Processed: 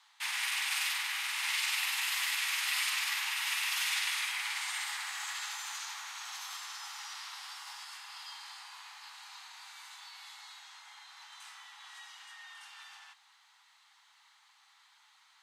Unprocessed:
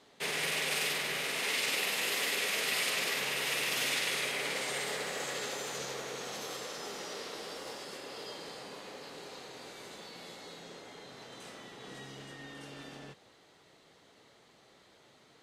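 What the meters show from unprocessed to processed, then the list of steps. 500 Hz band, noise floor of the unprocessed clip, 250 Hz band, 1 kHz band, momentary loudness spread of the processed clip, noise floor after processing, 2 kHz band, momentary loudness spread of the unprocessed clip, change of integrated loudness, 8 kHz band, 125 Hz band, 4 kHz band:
under -30 dB, -62 dBFS, under -40 dB, -1.5 dB, 19 LU, -65 dBFS, 0.0 dB, 18 LU, 0.0 dB, 0.0 dB, under -40 dB, 0.0 dB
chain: steep high-pass 830 Hz 72 dB/octave

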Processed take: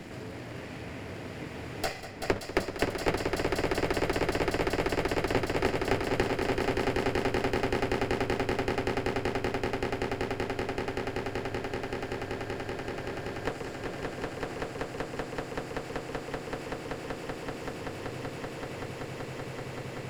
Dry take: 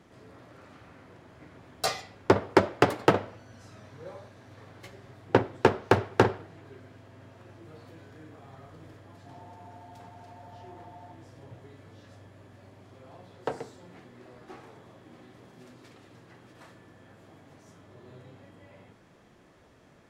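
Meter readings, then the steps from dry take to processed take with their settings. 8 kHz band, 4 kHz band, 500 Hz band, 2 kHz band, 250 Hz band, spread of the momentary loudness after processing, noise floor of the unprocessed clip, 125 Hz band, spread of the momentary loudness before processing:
+3.0 dB, +4.0 dB, +1.0 dB, +3.5 dB, +2.0 dB, 10 LU, -58 dBFS, +1.5 dB, 22 LU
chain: comb filter that takes the minimum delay 0.4 ms; echo with a slow build-up 191 ms, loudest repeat 8, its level -5 dB; three bands compressed up and down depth 70%; trim -5.5 dB

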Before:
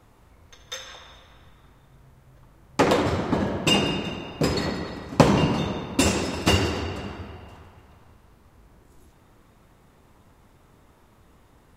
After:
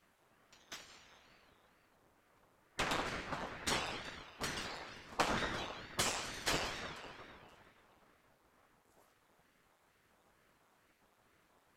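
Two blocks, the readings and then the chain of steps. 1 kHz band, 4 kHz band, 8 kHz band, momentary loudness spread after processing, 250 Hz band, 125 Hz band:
-13.0 dB, -13.0 dB, -10.5 dB, 16 LU, -23.0 dB, -24.0 dB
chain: spectral gate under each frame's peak -10 dB weak; ring modulator with a swept carrier 520 Hz, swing 85%, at 2.2 Hz; trim -7 dB

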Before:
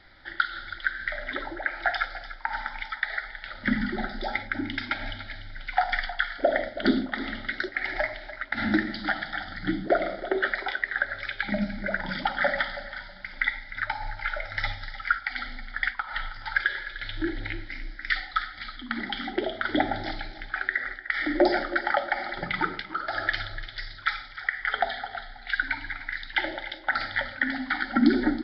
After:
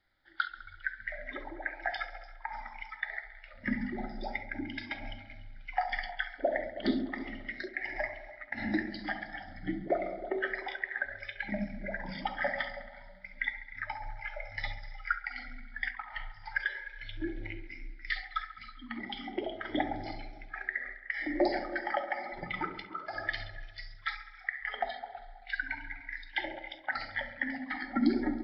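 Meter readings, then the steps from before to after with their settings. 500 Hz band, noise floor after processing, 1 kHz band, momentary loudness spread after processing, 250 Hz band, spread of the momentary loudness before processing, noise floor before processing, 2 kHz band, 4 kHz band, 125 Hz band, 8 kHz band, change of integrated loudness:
-6.5 dB, -52 dBFS, -7.5 dB, 10 LU, -6.5 dB, 9 LU, -44 dBFS, -8.0 dB, -9.5 dB, -7.0 dB, no reading, -7.5 dB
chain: spectral noise reduction 15 dB; feedback echo behind a low-pass 68 ms, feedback 72%, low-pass 2.6 kHz, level -13 dB; trim -7 dB

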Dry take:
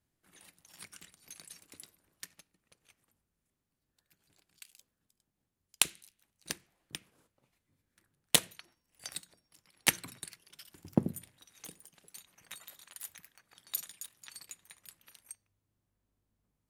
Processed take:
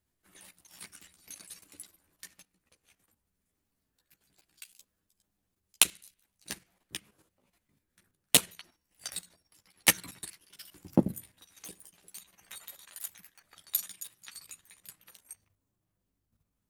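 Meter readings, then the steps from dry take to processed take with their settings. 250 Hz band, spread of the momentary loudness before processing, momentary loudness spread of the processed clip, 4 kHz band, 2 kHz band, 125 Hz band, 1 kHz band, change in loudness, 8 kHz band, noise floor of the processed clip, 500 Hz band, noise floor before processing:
+4.0 dB, 23 LU, 23 LU, +3.0 dB, +3.0 dB, +2.5 dB, +3.0 dB, +4.5 dB, +4.5 dB, -82 dBFS, +4.0 dB, -85 dBFS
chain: chorus voices 6, 0.54 Hz, delay 13 ms, depth 3.2 ms; level held to a coarse grid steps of 9 dB; treble shelf 11 kHz +5 dB; trim +8 dB

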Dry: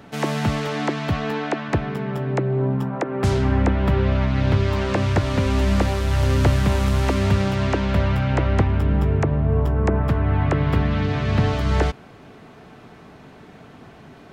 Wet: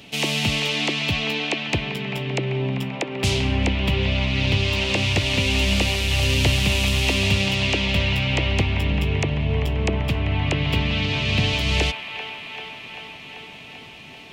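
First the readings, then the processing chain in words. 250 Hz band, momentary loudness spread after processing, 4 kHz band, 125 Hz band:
-3.0 dB, 14 LU, +12.5 dB, -3.0 dB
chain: resonant high shelf 2 kHz +10 dB, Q 3; feedback echo behind a band-pass 390 ms, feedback 74%, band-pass 1.4 kHz, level -7.5 dB; trim -3 dB

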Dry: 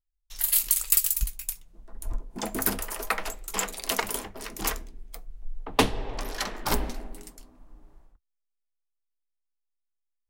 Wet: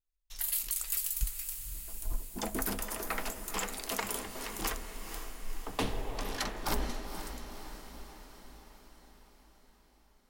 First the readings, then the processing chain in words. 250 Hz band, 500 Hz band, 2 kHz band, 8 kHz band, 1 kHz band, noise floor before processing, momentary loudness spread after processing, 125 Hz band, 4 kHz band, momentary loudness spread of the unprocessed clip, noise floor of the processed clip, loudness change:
-6.0 dB, -6.5 dB, -6.5 dB, -8.0 dB, -6.5 dB, -80 dBFS, 18 LU, -4.5 dB, -6.5 dB, 23 LU, -65 dBFS, -9.0 dB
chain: peak limiter -16 dBFS, peak gain reduction 10.5 dB; echo that smears into a reverb 491 ms, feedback 60%, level -9 dB; trim -4 dB

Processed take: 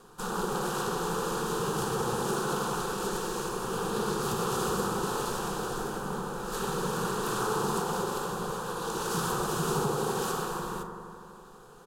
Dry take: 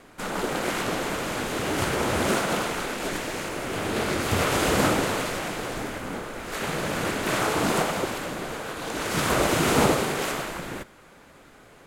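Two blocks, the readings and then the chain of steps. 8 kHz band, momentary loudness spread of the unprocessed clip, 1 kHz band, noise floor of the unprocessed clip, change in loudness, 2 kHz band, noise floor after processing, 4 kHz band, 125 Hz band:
-4.0 dB, 11 LU, -3.0 dB, -51 dBFS, -5.0 dB, -9.5 dB, -50 dBFS, -7.5 dB, -4.0 dB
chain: compression 6:1, threshold -25 dBFS, peak gain reduction 9.5 dB; static phaser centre 420 Hz, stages 8; doubling 42 ms -14 dB; bucket-brigade echo 82 ms, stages 1024, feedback 80%, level -7 dB

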